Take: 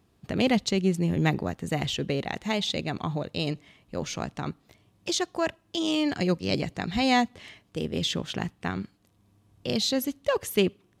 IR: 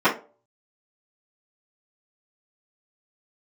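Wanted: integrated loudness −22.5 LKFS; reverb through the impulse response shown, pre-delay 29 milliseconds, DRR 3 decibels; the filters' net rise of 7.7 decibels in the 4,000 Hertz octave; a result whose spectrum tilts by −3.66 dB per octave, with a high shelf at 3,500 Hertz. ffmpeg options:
-filter_complex "[0:a]highshelf=frequency=3500:gain=7.5,equalizer=frequency=4000:width_type=o:gain=4.5,asplit=2[link_01][link_02];[1:a]atrim=start_sample=2205,adelay=29[link_03];[link_02][link_03]afir=irnorm=-1:irlink=0,volume=-23dB[link_04];[link_01][link_04]amix=inputs=2:normalize=0,volume=1.5dB"

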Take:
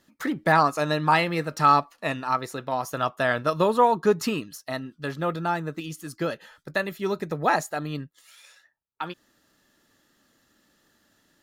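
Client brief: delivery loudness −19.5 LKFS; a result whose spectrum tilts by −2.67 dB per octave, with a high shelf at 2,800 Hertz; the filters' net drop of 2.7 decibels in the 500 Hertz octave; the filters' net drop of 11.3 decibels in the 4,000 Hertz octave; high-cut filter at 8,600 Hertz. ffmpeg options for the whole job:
ffmpeg -i in.wav -af "lowpass=8600,equalizer=frequency=500:width_type=o:gain=-3,highshelf=frequency=2800:gain=-7.5,equalizer=frequency=4000:width_type=o:gain=-8.5,volume=8dB" out.wav

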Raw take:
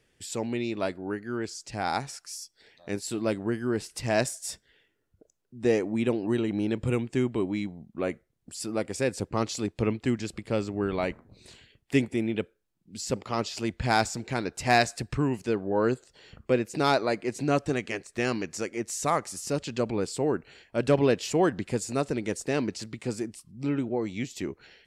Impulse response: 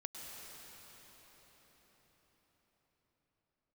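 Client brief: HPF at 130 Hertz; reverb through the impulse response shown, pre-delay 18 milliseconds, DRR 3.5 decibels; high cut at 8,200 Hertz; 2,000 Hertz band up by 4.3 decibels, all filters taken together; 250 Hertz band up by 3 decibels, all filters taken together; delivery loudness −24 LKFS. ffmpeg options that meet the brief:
-filter_complex "[0:a]highpass=130,lowpass=8200,equalizer=frequency=250:width_type=o:gain=4,equalizer=frequency=2000:width_type=o:gain=5.5,asplit=2[link_01][link_02];[1:a]atrim=start_sample=2205,adelay=18[link_03];[link_02][link_03]afir=irnorm=-1:irlink=0,volume=-2dB[link_04];[link_01][link_04]amix=inputs=2:normalize=0,volume=2dB"

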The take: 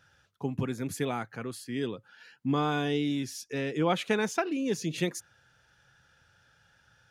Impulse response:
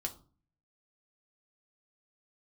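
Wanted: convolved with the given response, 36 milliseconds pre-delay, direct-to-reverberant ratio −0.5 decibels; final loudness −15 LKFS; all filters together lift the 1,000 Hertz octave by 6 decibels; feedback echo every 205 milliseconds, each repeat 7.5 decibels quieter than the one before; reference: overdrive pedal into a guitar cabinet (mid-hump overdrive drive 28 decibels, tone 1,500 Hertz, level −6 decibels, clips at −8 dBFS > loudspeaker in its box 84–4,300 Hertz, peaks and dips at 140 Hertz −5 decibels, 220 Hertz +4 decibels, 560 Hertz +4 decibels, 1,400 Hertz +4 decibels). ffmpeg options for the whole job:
-filter_complex "[0:a]equalizer=frequency=1000:width_type=o:gain=6.5,aecho=1:1:205|410|615|820|1025:0.422|0.177|0.0744|0.0312|0.0131,asplit=2[link_01][link_02];[1:a]atrim=start_sample=2205,adelay=36[link_03];[link_02][link_03]afir=irnorm=-1:irlink=0,volume=0.5dB[link_04];[link_01][link_04]amix=inputs=2:normalize=0,asplit=2[link_05][link_06];[link_06]highpass=frequency=720:poles=1,volume=28dB,asoftclip=type=tanh:threshold=-8dB[link_07];[link_05][link_07]amix=inputs=2:normalize=0,lowpass=frequency=1500:poles=1,volume=-6dB,highpass=84,equalizer=frequency=140:width_type=q:width=4:gain=-5,equalizer=frequency=220:width_type=q:width=4:gain=4,equalizer=frequency=560:width_type=q:width=4:gain=4,equalizer=frequency=1400:width_type=q:width=4:gain=4,lowpass=frequency=4300:width=0.5412,lowpass=frequency=4300:width=1.3066,volume=2dB"

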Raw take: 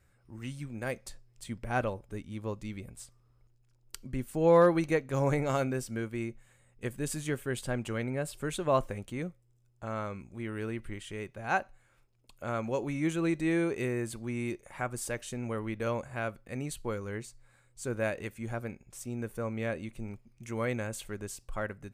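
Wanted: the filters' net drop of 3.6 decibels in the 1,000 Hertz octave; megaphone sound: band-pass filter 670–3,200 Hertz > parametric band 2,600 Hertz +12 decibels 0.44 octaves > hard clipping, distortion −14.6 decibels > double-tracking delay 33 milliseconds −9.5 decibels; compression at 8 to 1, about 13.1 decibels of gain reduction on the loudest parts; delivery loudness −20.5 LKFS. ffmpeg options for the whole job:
ffmpeg -i in.wav -filter_complex "[0:a]equalizer=frequency=1000:width_type=o:gain=-3.5,acompressor=threshold=-32dB:ratio=8,highpass=670,lowpass=3200,equalizer=frequency=2600:width_type=o:width=0.44:gain=12,asoftclip=type=hard:threshold=-32.5dB,asplit=2[link_01][link_02];[link_02]adelay=33,volume=-9.5dB[link_03];[link_01][link_03]amix=inputs=2:normalize=0,volume=22.5dB" out.wav

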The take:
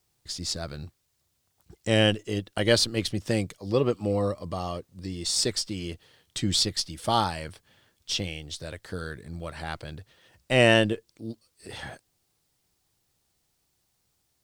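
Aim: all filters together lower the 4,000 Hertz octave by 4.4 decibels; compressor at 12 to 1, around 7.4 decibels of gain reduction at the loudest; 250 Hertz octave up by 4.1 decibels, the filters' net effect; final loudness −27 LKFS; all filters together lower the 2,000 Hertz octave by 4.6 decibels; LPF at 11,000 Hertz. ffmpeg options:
ffmpeg -i in.wav -af "lowpass=11000,equalizer=frequency=250:width_type=o:gain=5.5,equalizer=frequency=2000:width_type=o:gain=-4.5,equalizer=frequency=4000:width_type=o:gain=-4.5,acompressor=threshold=-21dB:ratio=12,volume=4dB" out.wav

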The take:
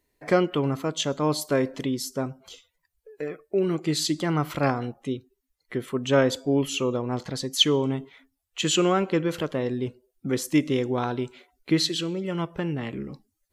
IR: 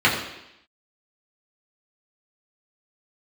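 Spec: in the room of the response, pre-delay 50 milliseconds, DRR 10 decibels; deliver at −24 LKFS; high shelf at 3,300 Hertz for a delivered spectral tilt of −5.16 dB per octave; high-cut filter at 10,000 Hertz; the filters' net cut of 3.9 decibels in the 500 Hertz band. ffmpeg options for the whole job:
-filter_complex "[0:a]lowpass=10000,equalizer=frequency=500:width_type=o:gain=-5,highshelf=frequency=3300:gain=-5,asplit=2[link_01][link_02];[1:a]atrim=start_sample=2205,adelay=50[link_03];[link_02][link_03]afir=irnorm=-1:irlink=0,volume=-31dB[link_04];[link_01][link_04]amix=inputs=2:normalize=0,volume=4dB"

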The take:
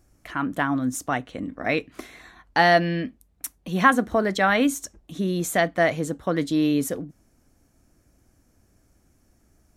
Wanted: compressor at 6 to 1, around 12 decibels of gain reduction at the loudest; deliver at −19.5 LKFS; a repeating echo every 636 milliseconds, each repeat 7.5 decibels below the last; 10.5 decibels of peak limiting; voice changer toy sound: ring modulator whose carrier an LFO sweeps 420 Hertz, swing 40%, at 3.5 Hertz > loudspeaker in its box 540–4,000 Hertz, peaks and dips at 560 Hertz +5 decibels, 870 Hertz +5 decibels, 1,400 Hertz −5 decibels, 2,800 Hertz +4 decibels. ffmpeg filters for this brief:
ffmpeg -i in.wav -af "acompressor=threshold=-25dB:ratio=6,alimiter=limit=-23dB:level=0:latency=1,aecho=1:1:636|1272|1908|2544|3180:0.422|0.177|0.0744|0.0312|0.0131,aeval=exprs='val(0)*sin(2*PI*420*n/s+420*0.4/3.5*sin(2*PI*3.5*n/s))':channel_layout=same,highpass=540,equalizer=frequency=560:width_type=q:width=4:gain=5,equalizer=frequency=870:width_type=q:width=4:gain=5,equalizer=frequency=1400:width_type=q:width=4:gain=-5,equalizer=frequency=2800:width_type=q:width=4:gain=4,lowpass=frequency=4000:width=0.5412,lowpass=frequency=4000:width=1.3066,volume=17.5dB" out.wav

